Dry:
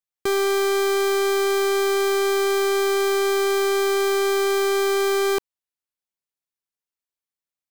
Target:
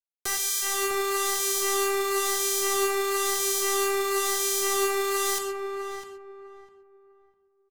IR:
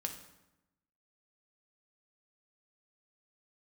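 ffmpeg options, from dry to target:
-filter_complex "[0:a]bass=f=250:g=-8,treble=f=4k:g=14,bandreject=f=80.81:t=h:w=4,bandreject=f=161.62:t=h:w=4,bandreject=f=242.43:t=h:w=4,bandreject=f=323.24:t=h:w=4,bandreject=f=404.05:t=h:w=4,bandreject=f=484.86:t=h:w=4,bandreject=f=565.67:t=h:w=4,bandreject=f=646.48:t=h:w=4,bandreject=f=727.29:t=h:w=4,bandreject=f=808.1:t=h:w=4,bandreject=f=888.91:t=h:w=4,bandreject=f=969.72:t=h:w=4,acrossover=split=120[a][b];[b]alimiter=limit=-10dB:level=0:latency=1[c];[a][c]amix=inputs=2:normalize=0,acrossover=split=840[d][e];[d]aeval=exprs='val(0)*(1-0.7/2+0.7/2*cos(2*PI*1*n/s))':c=same[f];[e]aeval=exprs='val(0)*(1-0.7/2-0.7/2*cos(2*PI*1*n/s))':c=same[g];[f][g]amix=inputs=2:normalize=0,acrusher=bits=4:mix=0:aa=0.000001,aphaser=in_gain=1:out_gain=1:delay=4.7:decay=0.23:speed=1.5:type=triangular,asplit=2[h][i];[i]adelay=652,lowpass=f=1.1k:p=1,volume=-3.5dB,asplit=2[j][k];[k]adelay=652,lowpass=f=1.1k:p=1,volume=0.29,asplit=2[l][m];[m]adelay=652,lowpass=f=1.1k:p=1,volume=0.29,asplit=2[n][o];[o]adelay=652,lowpass=f=1.1k:p=1,volume=0.29[p];[h][j][l][n][p]amix=inputs=5:normalize=0[q];[1:a]atrim=start_sample=2205,atrim=end_sample=4410,asetrate=30429,aresample=44100[r];[q][r]afir=irnorm=-1:irlink=0"

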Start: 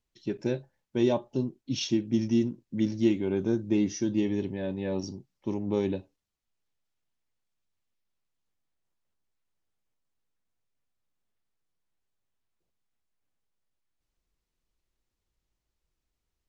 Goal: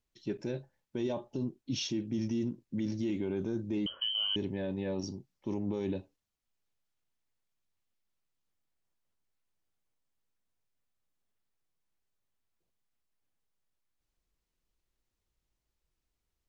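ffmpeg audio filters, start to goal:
-filter_complex "[0:a]alimiter=limit=-24dB:level=0:latency=1:release=24,asettb=1/sr,asplit=3[a][b][c];[a]atrim=end=3.864[d];[b]atrim=start=3.86:end=4.36,asetpts=PTS-STARTPTS,afade=t=in:d=0.004:c=qsin,afade=t=out:st=0.496:d=0.004:c=qsin,lowpass=f=2.8k:t=q:w=0.5098,lowpass=f=2.8k:t=q:w=0.6013,lowpass=f=2.8k:t=q:w=0.9,lowpass=f=2.8k:t=q:w=2.563,afreqshift=-3300[e];[c]atrim=start=4.356[f];[d][e]acrossfade=d=0.004:c1=hsin:c2=qsin[g];[g][f]acrossfade=d=0.004:c1=qsin:c2=hsin,volume=-1.5dB"

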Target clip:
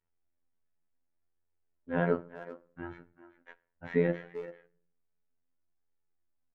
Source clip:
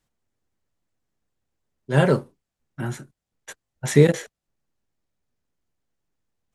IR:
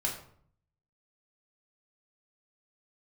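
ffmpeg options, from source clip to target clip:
-filter_complex "[0:a]lowpass=f=2.4k:w=0.5412,lowpass=f=2.4k:w=1.3066,asplit=2[a][b];[b]adelay=390,highpass=300,lowpass=3.4k,asoftclip=type=hard:threshold=-13dB,volume=-14dB[c];[a][c]amix=inputs=2:normalize=0,flanger=delay=2.2:depth=2.5:regen=44:speed=0.67:shape=sinusoidal,asplit=2[d][e];[1:a]atrim=start_sample=2205[f];[e][f]afir=irnorm=-1:irlink=0,volume=-18.5dB[g];[d][g]amix=inputs=2:normalize=0,afftfilt=real='hypot(re,im)*cos(PI*b)':imag='0':win_size=2048:overlap=0.75,volume=-3dB"

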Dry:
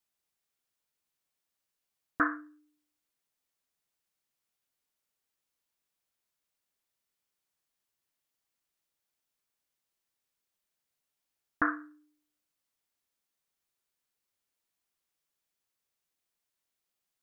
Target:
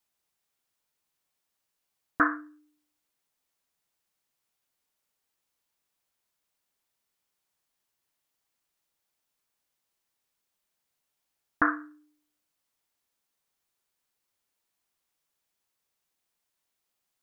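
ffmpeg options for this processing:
-af "equalizer=f=880:t=o:w=0.77:g=2.5,volume=3.5dB"

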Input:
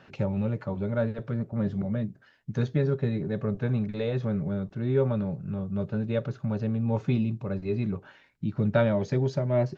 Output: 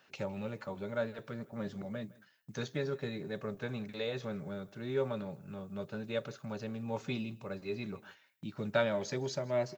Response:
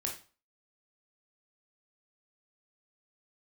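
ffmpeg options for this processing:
-filter_complex "[0:a]agate=range=-7dB:threshold=-49dB:ratio=16:detection=peak,aemphasis=mode=production:type=riaa,asplit=2[a][b];[b]aecho=0:1:160:0.0794[c];[a][c]amix=inputs=2:normalize=0,volume=-4dB"

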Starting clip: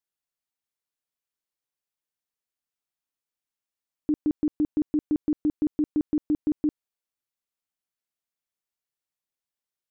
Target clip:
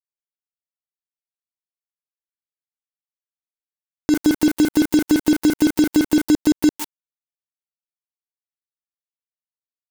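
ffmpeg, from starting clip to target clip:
-filter_complex "[0:a]aeval=exprs='val(0)+0.5*0.00708*sgn(val(0))':c=same,asettb=1/sr,asplit=3[a][b][c];[a]atrim=end=4.114[d];[b]atrim=start=4.11:end=6.26,asetpts=PTS-STARTPTS,afade=t=in:d=0.004:c=qsin,afade=t=out:st=2.146:d=0.004:c=qsin,asplit=2[e][f];[f]adelay=35,volume=-12dB[g];[e][g]amix=inputs=2:normalize=0,atrim=end_sample=94815[h];[c]atrim=start=6.256[i];[d][h]acrossfade=d=0.004:c1=hsin:c2=qsin[j];[j][i]acrossfade=d=0.004:c1=qsin:c2=hsin,asplit=2[k][l];[l]adelay=154,lowpass=f=990:p=1,volume=-20.5dB,asplit=2[m][n];[n]adelay=154,lowpass=f=990:p=1,volume=0.37,asplit=2[o][p];[p]adelay=154,lowpass=f=990:p=1,volume=0.37[q];[k][m][o][q]amix=inputs=4:normalize=0,acrusher=bits=5:mix=0:aa=0.5,lowshelf=f=350:g=-10,acompressor=threshold=-41dB:ratio=6,alimiter=level_in=34dB:limit=-1dB:release=50:level=0:latency=1,volume=-4.5dB"

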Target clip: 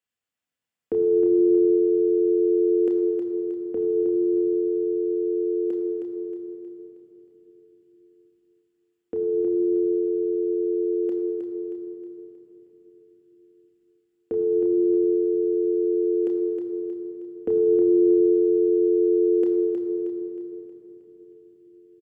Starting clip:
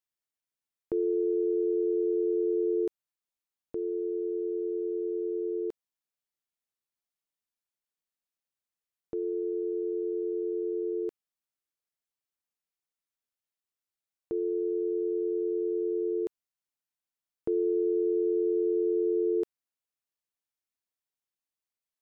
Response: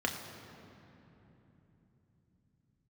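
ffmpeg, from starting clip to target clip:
-filter_complex "[0:a]aecho=1:1:315|630|945|1260|1575|1890:0.501|0.231|0.106|0.0488|0.0224|0.0103[a];[1:a]atrim=start_sample=2205[b];[a][b]afir=irnorm=-1:irlink=0"

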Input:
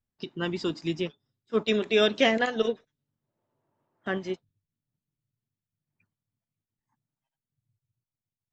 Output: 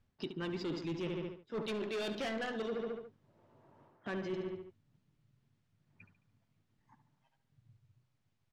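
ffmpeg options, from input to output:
-filter_complex "[0:a]asoftclip=type=hard:threshold=-25.5dB,adynamicsmooth=sensitivity=2.5:basefreq=4.6k,asplit=2[a][b];[b]adelay=72,lowpass=f=4.1k:p=1,volume=-11dB,asplit=2[c][d];[d]adelay=72,lowpass=f=4.1k:p=1,volume=0.49,asplit=2[e][f];[f]adelay=72,lowpass=f=4.1k:p=1,volume=0.49,asplit=2[g][h];[h]adelay=72,lowpass=f=4.1k:p=1,volume=0.49,asplit=2[i][j];[j]adelay=72,lowpass=f=4.1k:p=1,volume=0.49[k];[a][c][e][g][i][k]amix=inputs=6:normalize=0,alimiter=level_in=10dB:limit=-24dB:level=0:latency=1:release=211,volume=-10dB,areverse,acompressor=threshold=-49dB:ratio=12,areverse,volume=13.5dB"

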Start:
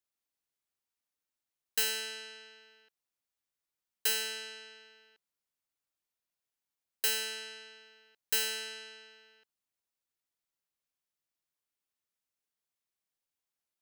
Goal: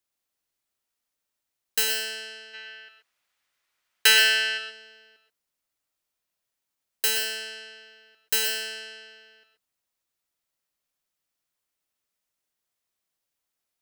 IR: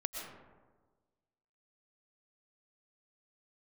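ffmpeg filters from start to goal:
-filter_complex "[0:a]asplit=3[a][b][c];[a]afade=t=out:st=2.53:d=0.02[d];[b]equalizer=f=1.9k:w=0.43:g=13,afade=t=in:st=2.53:d=0.02,afade=t=out:st=4.57:d=0.02[e];[c]afade=t=in:st=4.57:d=0.02[f];[d][e][f]amix=inputs=3:normalize=0[g];[1:a]atrim=start_sample=2205,atrim=end_sample=6174[h];[g][h]afir=irnorm=-1:irlink=0,volume=7dB"

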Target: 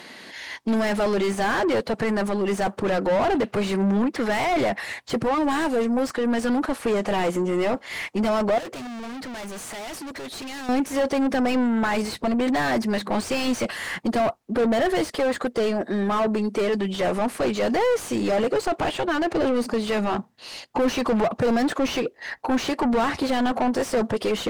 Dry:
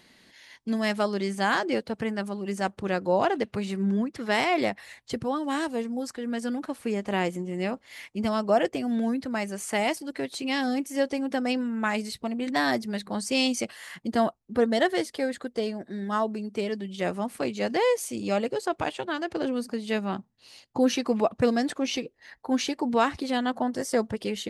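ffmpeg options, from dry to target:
-filter_complex "[0:a]aemphasis=mode=production:type=cd,asplit=2[a][b];[b]highpass=f=720:p=1,volume=33dB,asoftclip=type=tanh:threshold=-8.5dB[c];[a][c]amix=inputs=2:normalize=0,lowpass=f=1k:p=1,volume=-6dB,asettb=1/sr,asplit=3[d][e][f];[d]atrim=end=8.584[g];[e]atrim=start=8.58:end=10.69,asetpts=PTS-STARTPTS,afade=t=in:d=0.004:c=qsin,afade=t=out:st=2.106:d=0.004:c=qsin,asoftclip=type=hard:threshold=-29.5dB[h];[f]atrim=start=10.686[i];[g][h]acrossfade=d=0.004:c1=hsin:c2=qsin[j];[j][i]acrossfade=d=0.004:c1=qsin:c2=hsin,volume=-4dB"

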